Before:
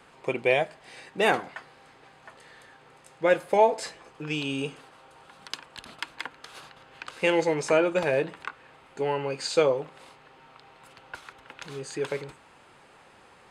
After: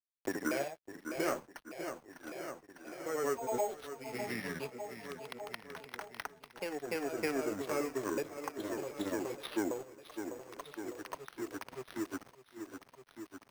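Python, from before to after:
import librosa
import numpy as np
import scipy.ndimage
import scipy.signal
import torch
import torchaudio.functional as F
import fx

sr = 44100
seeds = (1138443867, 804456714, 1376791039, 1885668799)

y = fx.pitch_ramps(x, sr, semitones=-9.0, every_ms=511)
y = fx.highpass(y, sr, hz=290.0, slope=6)
y = fx.high_shelf(y, sr, hz=2100.0, db=-6.5)
y = np.sign(y) * np.maximum(np.abs(y) - 10.0 ** (-43.5 / 20.0), 0.0)
y = fx.echo_feedback(y, sr, ms=602, feedback_pct=54, wet_db=-16.0)
y = fx.echo_pitch(y, sr, ms=90, semitones=1, count=2, db_per_echo=-6.0)
y = np.repeat(y[::6], 6)[:len(y)]
y = fx.band_squash(y, sr, depth_pct=70)
y = F.gain(torch.from_numpy(y), -5.5).numpy()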